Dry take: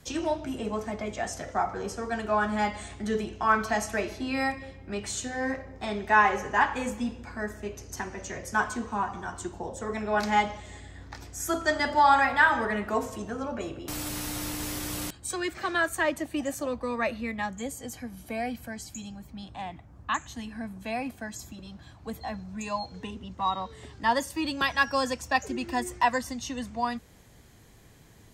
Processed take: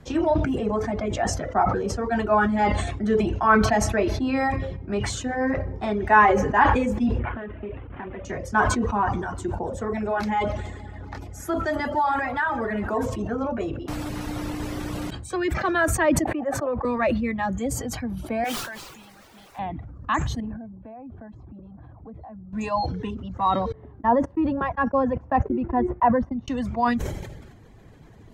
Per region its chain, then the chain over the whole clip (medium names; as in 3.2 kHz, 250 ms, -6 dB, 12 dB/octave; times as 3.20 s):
7.19–8.25 s: CVSD coder 16 kbps + compression 10:1, threshold -36 dBFS
9.09–13.06 s: peaking EQ 11 kHz +8 dB 0.41 oct + compression 2:1, threshold -30 dBFS + multi-head delay 141 ms, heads first and second, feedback 69%, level -21.5 dB
16.24–16.85 s: high-pass 53 Hz + three-band isolator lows -13 dB, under 350 Hz, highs -20 dB, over 2.2 kHz
18.44–19.59 s: band-pass filter 1.7 kHz, Q 1 + word length cut 8-bit, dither triangular
20.40–22.53 s: low-pass 1 kHz + compression 4:1, threshold -47 dBFS
23.72–26.48 s: low-pass 1.1 kHz + gate -38 dBFS, range -34 dB
whole clip: reverb removal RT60 0.72 s; low-pass 1.1 kHz 6 dB/octave; decay stretcher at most 42 dB/s; trim +8 dB